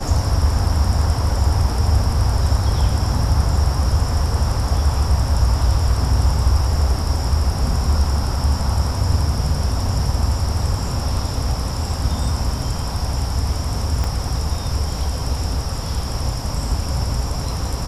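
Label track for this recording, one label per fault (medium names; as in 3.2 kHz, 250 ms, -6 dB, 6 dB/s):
14.040000	14.040000	pop -11 dBFS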